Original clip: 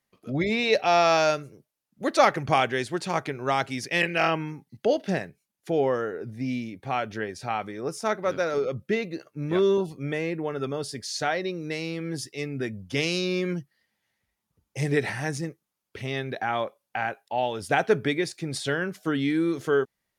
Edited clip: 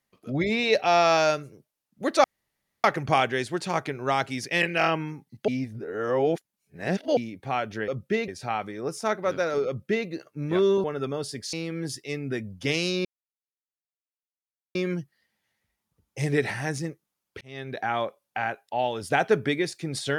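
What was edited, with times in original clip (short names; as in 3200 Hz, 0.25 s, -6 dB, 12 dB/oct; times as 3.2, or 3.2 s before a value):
2.24 insert room tone 0.60 s
4.88–6.57 reverse
8.67–9.07 copy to 7.28
9.84–10.44 cut
11.13–11.82 cut
13.34 insert silence 1.70 s
16–16.4 fade in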